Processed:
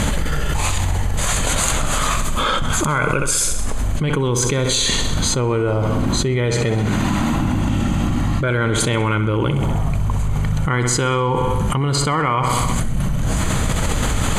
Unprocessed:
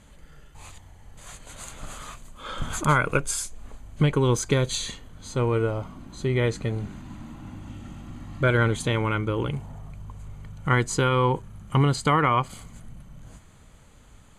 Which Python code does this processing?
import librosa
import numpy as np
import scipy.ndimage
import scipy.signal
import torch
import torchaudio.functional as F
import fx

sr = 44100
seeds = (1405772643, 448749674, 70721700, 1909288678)

y = fx.low_shelf(x, sr, hz=260.0, db=-7.5, at=(6.55, 7.36))
y = fx.echo_feedback(y, sr, ms=65, feedback_pct=57, wet_db=-12.5)
y = fx.env_flatten(y, sr, amount_pct=100)
y = y * 10.0 ** (-1.5 / 20.0)